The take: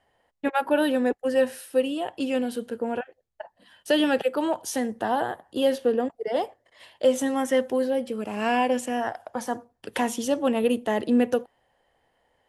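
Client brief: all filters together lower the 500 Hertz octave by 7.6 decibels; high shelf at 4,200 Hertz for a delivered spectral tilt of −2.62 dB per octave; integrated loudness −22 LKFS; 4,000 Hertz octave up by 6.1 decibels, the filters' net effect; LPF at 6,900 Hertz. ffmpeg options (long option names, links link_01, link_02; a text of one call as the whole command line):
ffmpeg -i in.wav -af "lowpass=6900,equalizer=frequency=500:width_type=o:gain=-8.5,equalizer=frequency=4000:width_type=o:gain=7.5,highshelf=frequency=4200:gain=3.5,volume=6.5dB" out.wav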